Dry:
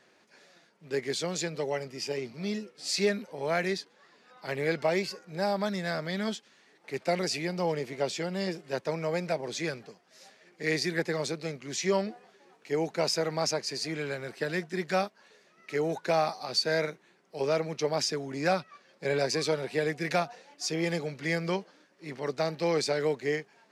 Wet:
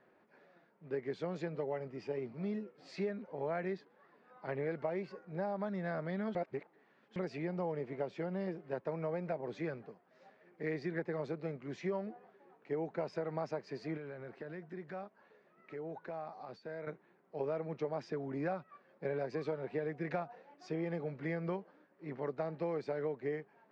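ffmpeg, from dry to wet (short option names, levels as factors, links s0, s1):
-filter_complex "[0:a]asettb=1/sr,asplit=3[s0][s1][s2];[s0]atrim=end=13.974[s3];[s1]atrim=start=13.97:end=16.87,asetpts=PTS-STARTPTS,afade=t=in:d=0.004:c=qsin,afade=t=out:st=2.896:d=0.004:c=qsin,acompressor=threshold=0.00891:ratio=3:attack=3.2:release=140:knee=1:detection=peak[s4];[s2]atrim=start=16.866[s5];[s3][s4]acrossfade=d=0.004:c1=hsin:c2=qsin[s6];[s6][s5]acrossfade=d=0.004:c1=qsin:c2=hsin,asplit=3[s7][s8][s9];[s7]atrim=end=6.352[s10];[s8]atrim=start=6.348:end=7.162,asetpts=PTS-STARTPTS,areverse[s11];[s9]atrim=start=7.158[s12];[s10][s11]acrossfade=d=0.004:c1=hsin:c2=hsin[s13];[s13][s12]acrossfade=d=0.004:c1=hsin:c2=hsin,lowpass=1400,acompressor=threshold=0.0282:ratio=5,volume=0.75"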